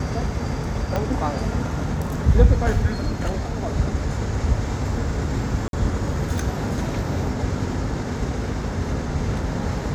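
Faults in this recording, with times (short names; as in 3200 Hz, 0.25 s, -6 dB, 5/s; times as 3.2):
0.96 pop -11 dBFS
5.68–5.73 gap 52 ms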